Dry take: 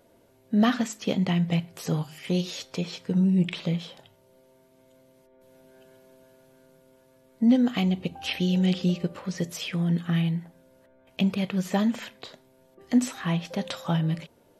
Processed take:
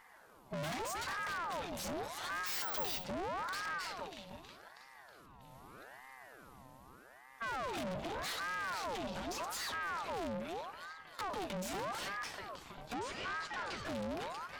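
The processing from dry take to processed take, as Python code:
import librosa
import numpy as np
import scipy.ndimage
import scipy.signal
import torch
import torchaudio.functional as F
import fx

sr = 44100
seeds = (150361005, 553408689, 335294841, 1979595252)

y = fx.vibrato(x, sr, rate_hz=6.1, depth_cents=12.0)
y = fx.echo_thinned(y, sr, ms=320, feedback_pct=57, hz=220.0, wet_db=-13.5)
y = fx.tube_stage(y, sr, drive_db=42.0, bias=0.7)
y = fx.resample_bad(y, sr, factor=2, down='filtered', up='zero_stuff', at=(2.46, 3.04))
y = fx.air_absorb(y, sr, metres=97.0, at=(12.94, 13.85))
y = fx.ring_lfo(y, sr, carrier_hz=910.0, swing_pct=60, hz=0.82)
y = F.gain(torch.from_numpy(y), 6.5).numpy()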